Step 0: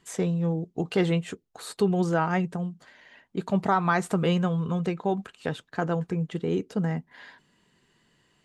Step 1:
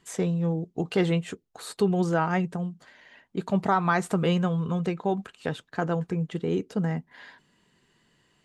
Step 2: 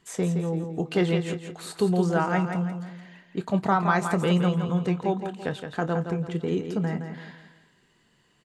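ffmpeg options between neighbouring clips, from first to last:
-af anull
-filter_complex "[0:a]asplit=2[s0][s1];[s1]adelay=28,volume=0.224[s2];[s0][s2]amix=inputs=2:normalize=0,asplit=2[s3][s4];[s4]aecho=0:1:168|336|504|672:0.422|0.164|0.0641|0.025[s5];[s3][s5]amix=inputs=2:normalize=0"

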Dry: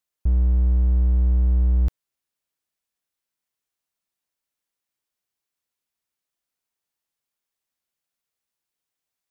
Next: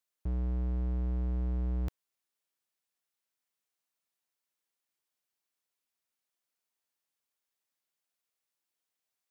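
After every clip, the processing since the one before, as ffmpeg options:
-af "highpass=f=220:p=1,volume=0.75"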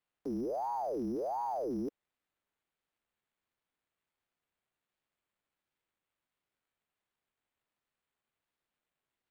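-filter_complex "[0:a]acrossover=split=140|3000[s0][s1][s2];[s1]acompressor=threshold=0.00282:ratio=2.5[s3];[s0][s3][s2]amix=inputs=3:normalize=0,acrusher=samples=8:mix=1:aa=0.000001,aeval=exprs='val(0)*sin(2*PI*580*n/s+580*0.55/1.4*sin(2*PI*1.4*n/s))':c=same,volume=0.891"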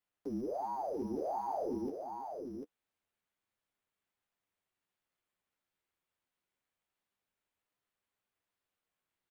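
-af "flanger=delay=9.8:depth=1.7:regen=-15:speed=0.26:shape=sinusoidal,aecho=1:1:346|705|746:0.126|0.126|0.531,volume=1.12"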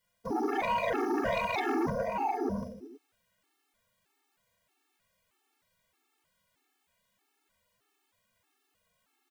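-af "aecho=1:1:40|90|152.5|230.6|328.3:0.631|0.398|0.251|0.158|0.1,aeval=exprs='0.0841*sin(PI/2*4.47*val(0)/0.0841)':c=same,afftfilt=real='re*gt(sin(2*PI*1.6*pts/sr)*(1-2*mod(floor(b*sr/1024/230),2)),0)':imag='im*gt(sin(2*PI*1.6*pts/sr)*(1-2*mod(floor(b*sr/1024/230),2)),0)':win_size=1024:overlap=0.75,volume=0.794"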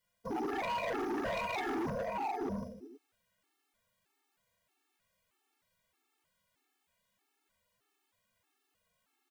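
-af "asoftclip=type=hard:threshold=0.0376,volume=0.668"

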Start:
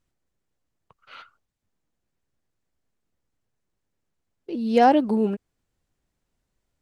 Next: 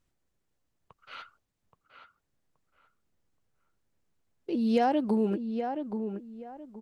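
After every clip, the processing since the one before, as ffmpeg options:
-filter_complex "[0:a]acompressor=threshold=0.0794:ratio=6,asplit=2[s0][s1];[s1]adelay=825,lowpass=f=1800:p=1,volume=0.447,asplit=2[s2][s3];[s3]adelay=825,lowpass=f=1800:p=1,volume=0.27,asplit=2[s4][s5];[s5]adelay=825,lowpass=f=1800:p=1,volume=0.27[s6];[s0][s2][s4][s6]amix=inputs=4:normalize=0"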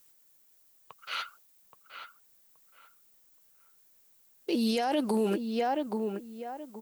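-af "aemphasis=mode=production:type=riaa,alimiter=level_in=1.33:limit=0.0631:level=0:latency=1:release=14,volume=0.75,volume=2.24"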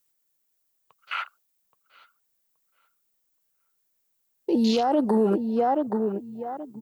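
-af "afwtdn=0.0141,volume=2.11"

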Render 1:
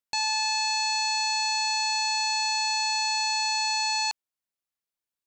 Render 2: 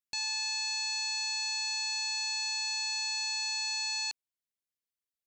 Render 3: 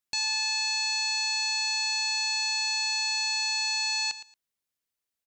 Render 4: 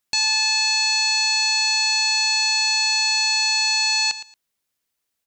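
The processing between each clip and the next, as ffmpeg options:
-af "equalizer=f=880:t=o:w=1.2:g=-12,volume=0.562"
-af "aecho=1:1:114|228:0.2|0.0339,volume=1.88"
-af "bandreject=f=50:t=h:w=6,bandreject=f=100:t=h:w=6,volume=2.66"

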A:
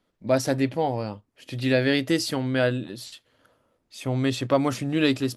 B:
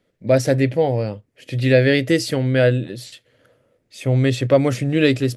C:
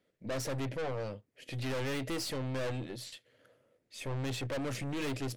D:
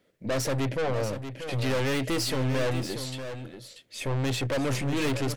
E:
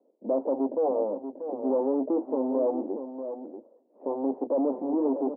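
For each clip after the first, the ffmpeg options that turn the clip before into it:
-af "equalizer=f=125:t=o:w=1:g=10,equalizer=f=500:t=o:w=1:g=10,equalizer=f=1000:t=o:w=1:g=-7,equalizer=f=2000:t=o:w=1:g=8,equalizer=f=8000:t=o:w=1:g=3"
-af "lowshelf=f=120:g=-9.5,aeval=exprs='(tanh(22.4*val(0)+0.35)-tanh(0.35))/22.4':c=same,volume=0.473"
-af "aecho=1:1:637:0.335,volume=2.51"
-af "asuperpass=centerf=470:order=12:qfactor=0.67,volume=1.5"

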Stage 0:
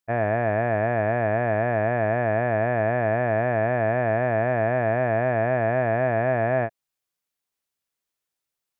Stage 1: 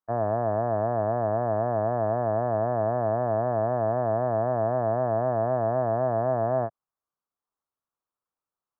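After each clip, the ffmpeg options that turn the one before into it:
-filter_complex "[0:a]acrossover=split=2600[s0][s1];[s1]acompressor=threshold=0.00251:ratio=4:attack=1:release=60[s2];[s0][s2]amix=inputs=2:normalize=0,highshelf=f=1700:t=q:w=3:g=-13,acrossover=split=150|1200[s3][s4][s5];[s5]alimiter=level_in=2.99:limit=0.0631:level=0:latency=1:release=46,volume=0.335[s6];[s3][s4][s6]amix=inputs=3:normalize=0,volume=0.631"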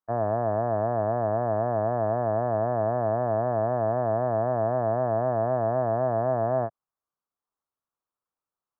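-af anull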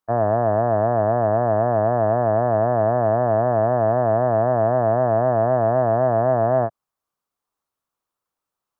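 -af "acontrast=80"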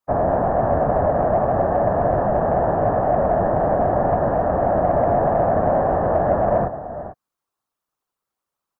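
-filter_complex "[0:a]asplit=2[s0][s1];[s1]adelay=443.1,volume=0.251,highshelf=f=4000:g=-9.97[s2];[s0][s2]amix=inputs=2:normalize=0,afftfilt=real='hypot(re,im)*cos(2*PI*random(0))':imag='hypot(re,im)*sin(2*PI*random(1))':win_size=512:overlap=0.75,acontrast=89,volume=0.891"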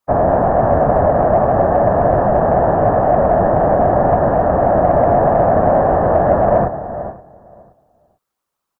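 -filter_complex "[0:a]asplit=2[s0][s1];[s1]adelay=523,lowpass=f=1900:p=1,volume=0.0891,asplit=2[s2][s3];[s3]adelay=523,lowpass=f=1900:p=1,volume=0.32[s4];[s0][s2][s4]amix=inputs=3:normalize=0,volume=1.88"

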